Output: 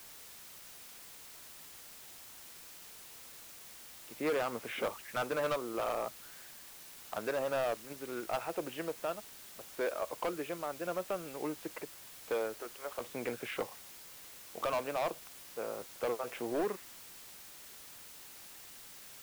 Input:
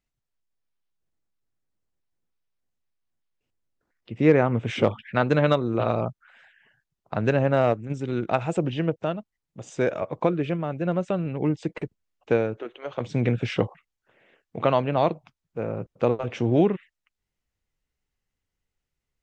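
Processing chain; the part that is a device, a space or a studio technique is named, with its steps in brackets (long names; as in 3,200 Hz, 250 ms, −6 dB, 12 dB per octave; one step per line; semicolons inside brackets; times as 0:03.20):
drive-through speaker (band-pass filter 440–2,900 Hz; parametric band 1,200 Hz +4 dB; hard clipping −21.5 dBFS, distortion −8 dB; white noise bed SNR 12 dB)
level −7 dB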